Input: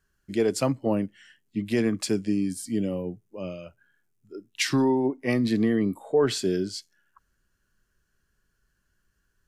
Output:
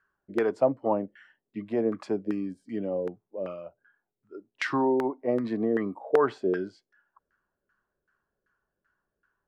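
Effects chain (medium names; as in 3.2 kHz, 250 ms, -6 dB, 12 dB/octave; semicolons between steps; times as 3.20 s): LFO low-pass saw down 2.6 Hz 470–1500 Hz; RIAA curve recording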